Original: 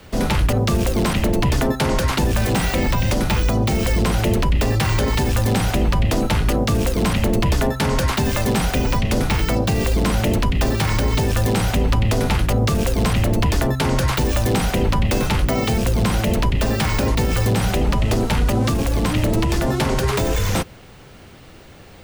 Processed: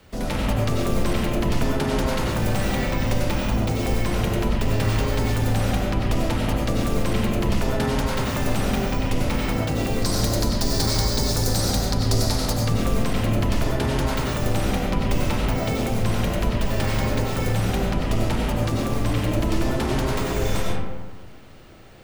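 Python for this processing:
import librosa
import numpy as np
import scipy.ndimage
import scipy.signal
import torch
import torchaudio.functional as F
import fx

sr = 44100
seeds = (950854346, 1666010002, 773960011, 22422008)

y = fx.high_shelf_res(x, sr, hz=3600.0, db=8.0, q=3.0, at=(10.02, 12.59))
y = fx.rev_freeverb(y, sr, rt60_s=1.4, hf_ratio=0.45, predelay_ms=55, drr_db=-2.5)
y = y * librosa.db_to_amplitude(-8.5)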